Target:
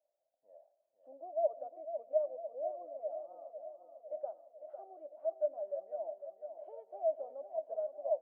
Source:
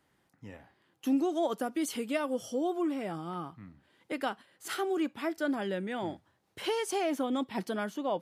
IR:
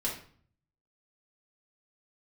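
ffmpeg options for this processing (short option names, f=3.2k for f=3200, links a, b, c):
-filter_complex "[0:a]asuperpass=centerf=620:order=4:qfactor=6.4,aecho=1:1:502|1004|1506|2008|2510|3012|3514:0.355|0.213|0.128|0.0766|0.046|0.0276|0.0166,asplit=2[a][b];[1:a]atrim=start_sample=2205,adelay=94[c];[b][c]afir=irnorm=-1:irlink=0,volume=-26dB[d];[a][d]amix=inputs=2:normalize=0,volume=3dB"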